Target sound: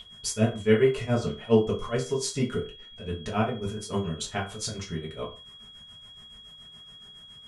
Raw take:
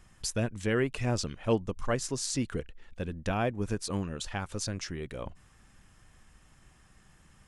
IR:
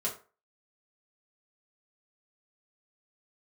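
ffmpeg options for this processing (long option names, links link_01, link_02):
-filter_complex "[0:a]aeval=exprs='val(0)+0.0112*sin(2*PI*3300*n/s)':channel_layout=same,tremolo=f=7.1:d=0.91[link_01];[1:a]atrim=start_sample=2205,afade=type=out:start_time=0.24:duration=0.01,atrim=end_sample=11025[link_02];[link_01][link_02]afir=irnorm=-1:irlink=0,volume=2.5dB"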